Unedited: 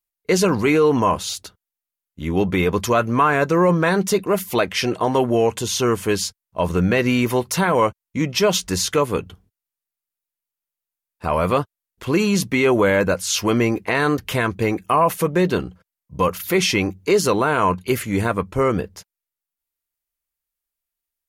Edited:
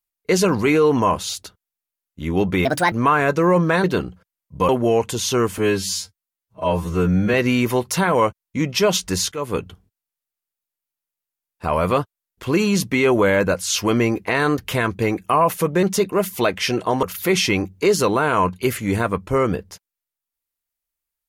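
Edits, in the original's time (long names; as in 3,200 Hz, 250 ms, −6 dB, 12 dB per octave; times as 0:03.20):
0:02.65–0:03.05: play speed 149%
0:03.97–0:05.17: swap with 0:15.43–0:16.28
0:06.06–0:06.94: time-stretch 2×
0:08.92–0:09.18: fade in, from −18 dB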